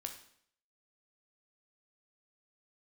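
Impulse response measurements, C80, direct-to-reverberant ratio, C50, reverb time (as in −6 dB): 12.0 dB, 4.5 dB, 9.0 dB, 0.65 s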